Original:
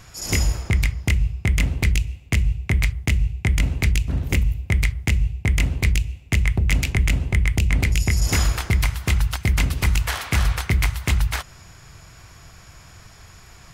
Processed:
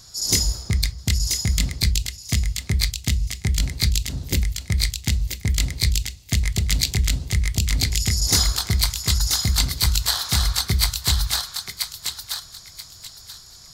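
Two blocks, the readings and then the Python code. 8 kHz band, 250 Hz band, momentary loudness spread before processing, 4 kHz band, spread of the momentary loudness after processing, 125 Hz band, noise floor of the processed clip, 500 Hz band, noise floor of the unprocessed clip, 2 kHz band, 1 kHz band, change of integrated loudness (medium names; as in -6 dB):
+8.0 dB, -3.0 dB, 3 LU, +9.0 dB, 10 LU, -2.5 dB, -45 dBFS, -4.5 dB, -46 dBFS, -5.5 dB, -2.5 dB, 0.0 dB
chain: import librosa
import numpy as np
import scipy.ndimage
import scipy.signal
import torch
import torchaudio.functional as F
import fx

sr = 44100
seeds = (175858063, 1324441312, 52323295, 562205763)

y = fx.high_shelf_res(x, sr, hz=3300.0, db=9.5, q=3.0)
y = fx.noise_reduce_blind(y, sr, reduce_db=6)
y = fx.echo_thinned(y, sr, ms=982, feedback_pct=27, hz=1200.0, wet_db=-4.0)
y = y * 10.0 ** (-1.0 / 20.0)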